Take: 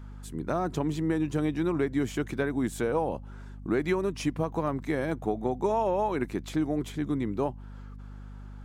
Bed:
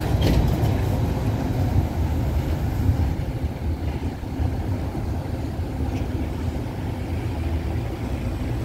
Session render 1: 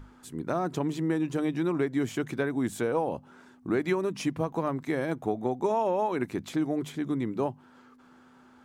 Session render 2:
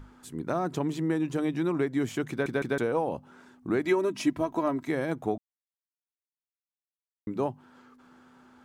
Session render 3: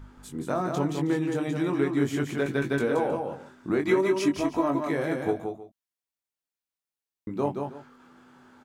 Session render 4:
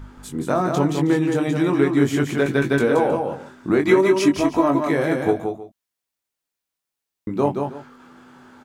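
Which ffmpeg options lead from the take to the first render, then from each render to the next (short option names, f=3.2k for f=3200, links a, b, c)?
-af "bandreject=f=50:t=h:w=6,bandreject=f=100:t=h:w=6,bandreject=f=150:t=h:w=6,bandreject=f=200:t=h:w=6"
-filter_complex "[0:a]asettb=1/sr,asplit=3[a][b][c];[a]atrim=end=3.854[d];[b]atrim=start=3.85:end=4.87,asetpts=PTS-STARTPTS,afade=t=in:d=0.004:c=qsin,afade=t=out:st=1.016:d=0.004:c=qsin,aecho=1:1:3.1:0.65,atrim=end_sample=44982[e];[c]atrim=start=4.866[f];[d][e]acrossfade=d=0.004:c1=hsin:c2=qsin[g];[g][f]acrossfade=d=0.004:c1=qsin:c2=hsin,asplit=6[h][i][j][k][l][m];[h]atrim=end=2.462[n];[i]atrim=start=2.298:end=2.462[o];[j]atrim=start=2.298:end=2.462[p];[k]atrim=start=2.778:end=5.38,asetpts=PTS-STARTPTS,afade=t=out:st=2.598:d=0.004:c=hsin[q];[l]atrim=start=5.38:end=7.27,asetpts=PTS-STARTPTS,volume=0[r];[m]atrim=start=7.27,asetpts=PTS-STARTPTS,afade=t=in:d=0.004:c=hsin[s];[n][o]acrossfade=d=0.004:c1=hsin:c2=hsin[t];[t][p]acrossfade=d=0.004:c1=hsin:c2=hsin[u];[q][r][s]concat=n=3:v=0:a=1[v];[u][v]acrossfade=d=0.004:c1=hsin:c2=hsin"
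-filter_complex "[0:a]asplit=2[a][b];[b]adelay=21,volume=-4.5dB[c];[a][c]amix=inputs=2:normalize=0,asplit=2[d][e];[e]aecho=0:1:175|190|317:0.562|0.106|0.133[f];[d][f]amix=inputs=2:normalize=0"
-af "volume=7.5dB"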